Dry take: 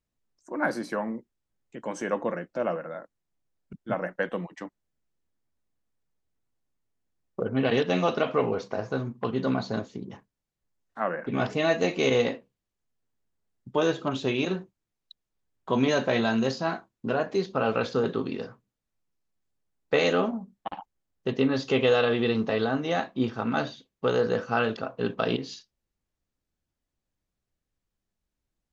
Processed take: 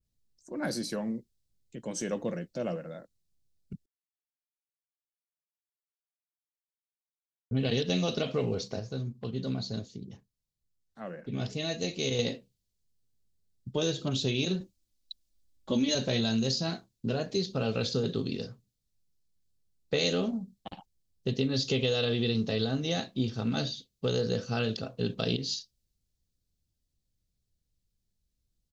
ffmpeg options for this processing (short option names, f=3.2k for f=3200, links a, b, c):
-filter_complex "[0:a]asettb=1/sr,asplit=3[a][b][c];[a]atrim=end=14.604[d];[b]atrim=start=14.6:end=15.95,asetpts=PTS-STARTPTS,afade=t=in:d=0.004:c=qsin,afade=t=out:st=1.346:d=0.004:c=qsin,aecho=1:1:3.5:0.94,atrim=end_sample=59535[e];[c]atrim=start=15.946[f];[d][e]acrossfade=d=0.004:c1=hsin:c2=qsin[g];[g][f]acrossfade=d=0.004:c1=qsin:c2=hsin,asplit=5[h][i][j][k][l];[h]atrim=end=3.86,asetpts=PTS-STARTPTS,afade=t=out:st=3.856:d=0.004:c=hsin[m];[i]atrim=start=3.86:end=7.51,asetpts=PTS-STARTPTS,volume=0[n];[j]atrim=start=7.51:end=8.792,asetpts=PTS-STARTPTS,afade=t=in:d=0.004:c=hsin[o];[k]atrim=start=8.788:end=12.192,asetpts=PTS-STARTPTS,volume=-5.5dB[p];[l]atrim=start=12.188[q];[m][n][o]concat=n=3:v=0:a=1[r];[r][p]acrossfade=d=0.004:c1=hsin:c2=hsin[s];[s][q]acrossfade=d=0.004:c1=hsin:c2=hsin,firequalizer=gain_entry='entry(110,0);entry(300,-10);entry(430,-9);entry(970,-20);entry(4200,-1);entry(6500,-3)':delay=0.05:min_phase=1,acompressor=threshold=-30dB:ratio=6,adynamicequalizer=threshold=0.002:dfrequency=2700:dqfactor=0.7:tfrequency=2700:tqfactor=0.7:attack=5:release=100:ratio=0.375:range=2.5:mode=boostabove:tftype=highshelf,volume=6dB"